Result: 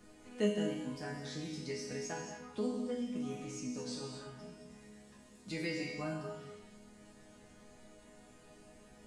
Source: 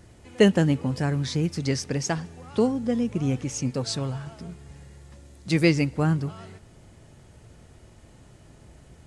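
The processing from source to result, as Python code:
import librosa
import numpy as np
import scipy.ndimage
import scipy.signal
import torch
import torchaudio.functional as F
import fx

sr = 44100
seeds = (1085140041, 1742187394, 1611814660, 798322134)

y = fx.resonator_bank(x, sr, root=56, chord='minor', decay_s=0.54)
y = fx.rev_gated(y, sr, seeds[0], gate_ms=270, shape='flat', drr_db=4.0)
y = fx.band_squash(y, sr, depth_pct=40)
y = y * 10.0 ** (6.5 / 20.0)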